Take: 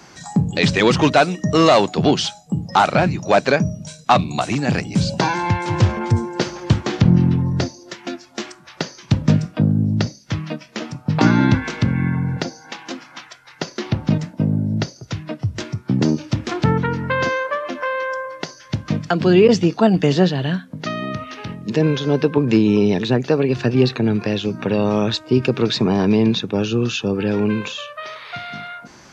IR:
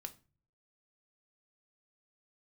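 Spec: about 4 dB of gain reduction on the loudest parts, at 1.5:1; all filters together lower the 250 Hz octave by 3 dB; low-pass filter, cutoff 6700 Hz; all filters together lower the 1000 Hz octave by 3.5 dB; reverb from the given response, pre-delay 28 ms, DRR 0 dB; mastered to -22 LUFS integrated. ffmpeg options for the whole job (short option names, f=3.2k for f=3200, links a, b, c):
-filter_complex "[0:a]lowpass=6.7k,equalizer=f=250:t=o:g=-4,equalizer=f=1k:t=o:g=-4.5,acompressor=threshold=-21dB:ratio=1.5,asplit=2[a][b];[1:a]atrim=start_sample=2205,adelay=28[c];[b][c]afir=irnorm=-1:irlink=0,volume=4.5dB[d];[a][d]amix=inputs=2:normalize=0,volume=-1.5dB"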